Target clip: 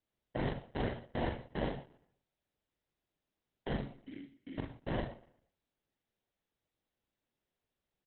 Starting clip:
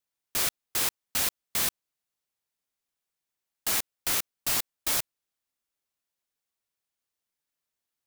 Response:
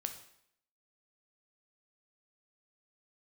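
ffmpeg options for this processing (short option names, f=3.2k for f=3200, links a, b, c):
-filter_complex "[0:a]highshelf=f=5.6k:g=-7.5,acrusher=samples=36:mix=1:aa=0.000001,aexciter=amount=6.3:drive=5:freq=5.3k,asplit=2[a][b];[b]asoftclip=type=hard:threshold=-26dB,volume=-10dB[c];[a][c]amix=inputs=2:normalize=0,asettb=1/sr,asplit=3[d][e][f];[d]atrim=end=3.774[g];[e]atrim=start=3.77:end=4.58,asetpts=PTS-STARTPTS,afade=t=in:d=0.004:c=qsin,afade=t=out:st=0.806:d=0.004:c=qsin,asplit=3[h][i][j];[h]bandpass=f=270:t=q:w=8,volume=0dB[k];[i]bandpass=f=2.29k:t=q:w=8,volume=-6dB[l];[j]bandpass=f=3.01k:t=q:w=8,volume=-9dB[m];[k][l][m]amix=inputs=3:normalize=0[n];[f]atrim=start=4.576[o];[g][n]acrossfade=d=0.004:c1=hsin:c2=qsin[p];[p][o]acrossfade=d=0.004:c1=qsin:c2=hsin,asplit=2[q][r];[r]adelay=43,volume=-4dB[s];[q][s]amix=inputs=2:normalize=0,asplit=2[t][u];[u]adelay=120,lowpass=f=4.4k:p=1,volume=-21dB,asplit=2[v][w];[w]adelay=120,lowpass=f=4.4k:p=1,volume=0.46,asplit=2[x][y];[y]adelay=120,lowpass=f=4.4k:p=1,volume=0.46[z];[t][v][x][z]amix=inputs=4:normalize=0[aa];[1:a]atrim=start_sample=2205,atrim=end_sample=6615[ab];[aa][ab]afir=irnorm=-1:irlink=0,volume=-4dB" -ar 48000 -c:a libopus -b:a 8k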